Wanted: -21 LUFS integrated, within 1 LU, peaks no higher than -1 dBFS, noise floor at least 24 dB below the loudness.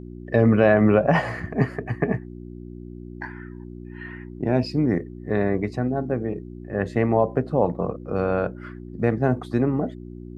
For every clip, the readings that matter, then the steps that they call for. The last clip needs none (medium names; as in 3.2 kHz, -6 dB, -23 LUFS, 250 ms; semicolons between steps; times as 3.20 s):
hum 60 Hz; highest harmonic 360 Hz; hum level -35 dBFS; loudness -23.0 LUFS; peak level -5.5 dBFS; loudness target -21.0 LUFS
-> de-hum 60 Hz, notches 6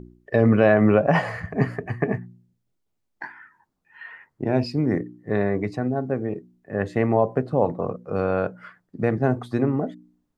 hum not found; loudness -23.5 LUFS; peak level -5.0 dBFS; loudness target -21.0 LUFS
-> trim +2.5 dB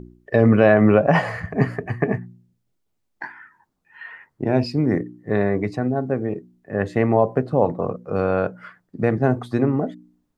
loudness -21.0 LUFS; peak level -3.0 dBFS; noise floor -73 dBFS